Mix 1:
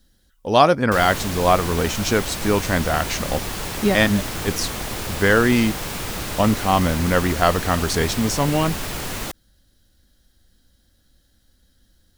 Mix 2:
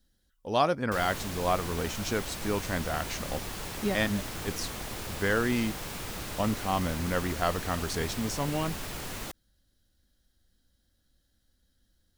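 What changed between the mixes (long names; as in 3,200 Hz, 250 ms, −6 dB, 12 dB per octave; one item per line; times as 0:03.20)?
speech −11.0 dB
background −9.5 dB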